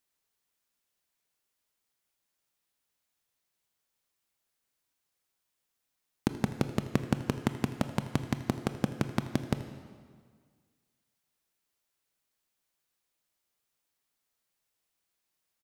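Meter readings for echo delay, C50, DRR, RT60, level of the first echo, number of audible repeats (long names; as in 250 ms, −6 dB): 81 ms, 9.5 dB, 8.5 dB, 1.8 s, −17.0 dB, 1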